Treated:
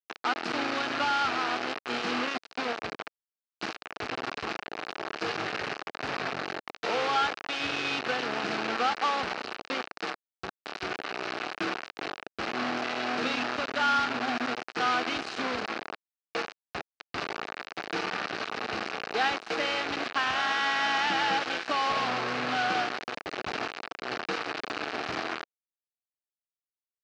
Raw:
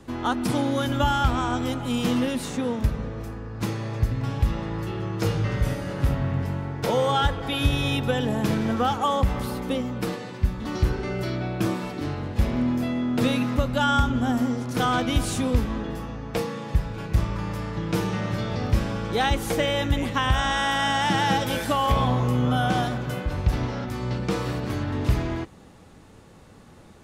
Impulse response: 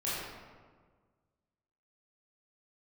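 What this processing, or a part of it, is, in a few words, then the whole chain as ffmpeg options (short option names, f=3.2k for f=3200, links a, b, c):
hand-held game console: -af "acrusher=bits=3:mix=0:aa=0.000001,highpass=490,equalizer=f=550:t=q:w=4:g=-8,equalizer=f=960:t=q:w=4:g=-7,equalizer=f=2k:t=q:w=4:g=-4,equalizer=f=3.4k:t=q:w=4:g=-8,lowpass=f=4.2k:w=0.5412,lowpass=f=4.2k:w=1.3066"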